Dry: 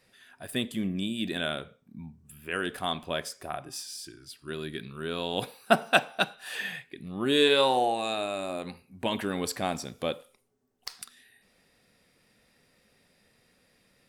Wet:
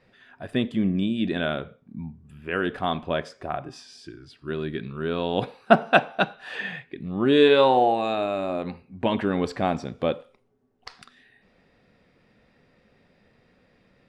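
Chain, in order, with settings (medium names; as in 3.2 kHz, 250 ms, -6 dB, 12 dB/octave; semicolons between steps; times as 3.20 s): tape spacing loss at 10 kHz 28 dB; trim +8 dB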